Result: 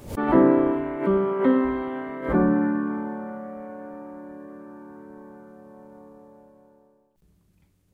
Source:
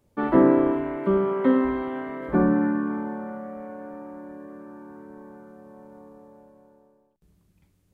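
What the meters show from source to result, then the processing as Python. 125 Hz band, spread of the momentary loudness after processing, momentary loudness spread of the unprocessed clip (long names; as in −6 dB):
+0.5 dB, 21 LU, 21 LU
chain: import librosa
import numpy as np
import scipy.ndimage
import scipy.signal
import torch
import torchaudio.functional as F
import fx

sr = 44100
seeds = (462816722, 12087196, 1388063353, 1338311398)

y = fx.pre_swell(x, sr, db_per_s=120.0)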